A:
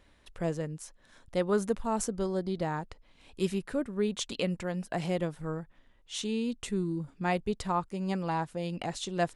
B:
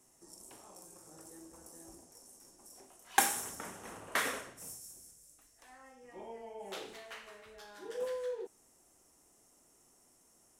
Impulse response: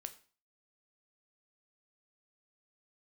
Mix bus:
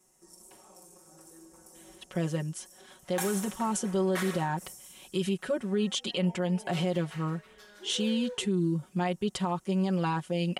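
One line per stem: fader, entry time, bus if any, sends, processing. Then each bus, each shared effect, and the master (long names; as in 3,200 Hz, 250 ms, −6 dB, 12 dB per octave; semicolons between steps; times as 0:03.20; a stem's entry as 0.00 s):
+1.5 dB, 1.75 s, no send, brickwall limiter −22.5 dBFS, peak gain reduction 6.5 dB; high-pass filter 100 Hz 12 dB per octave; parametric band 3,100 Hz +9.5 dB 0.22 octaves
−2.5 dB, 0.00 s, no send, no processing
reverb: not used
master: comb filter 5.4 ms, depth 86%; brickwall limiter −20.5 dBFS, peak gain reduction 9.5 dB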